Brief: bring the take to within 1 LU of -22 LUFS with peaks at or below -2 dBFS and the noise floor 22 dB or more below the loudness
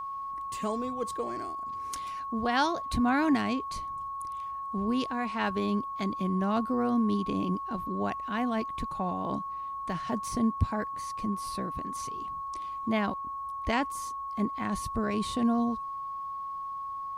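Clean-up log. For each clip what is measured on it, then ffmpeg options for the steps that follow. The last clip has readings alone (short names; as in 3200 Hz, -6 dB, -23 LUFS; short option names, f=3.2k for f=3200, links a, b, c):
steady tone 1100 Hz; tone level -34 dBFS; loudness -31.5 LUFS; peak -13.0 dBFS; loudness target -22.0 LUFS
-> -af "bandreject=f=1.1k:w=30"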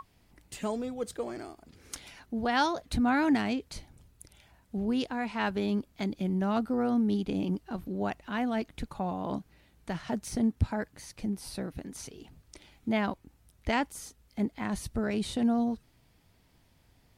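steady tone none; loudness -31.5 LUFS; peak -14.0 dBFS; loudness target -22.0 LUFS
-> -af "volume=9.5dB"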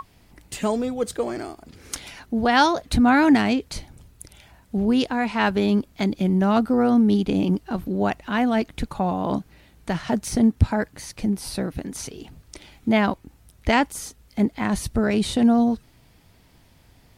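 loudness -22.0 LUFS; peak -4.5 dBFS; noise floor -56 dBFS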